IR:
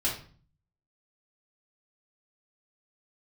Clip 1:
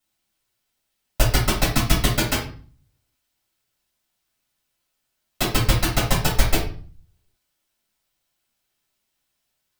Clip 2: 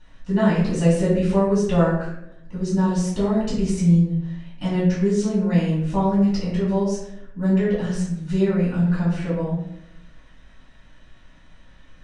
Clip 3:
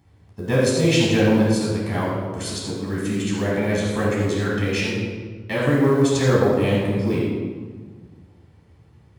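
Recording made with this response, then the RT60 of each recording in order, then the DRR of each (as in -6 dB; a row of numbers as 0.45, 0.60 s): 1; 0.45, 0.80, 1.6 s; -6.0, -10.0, -5.5 dB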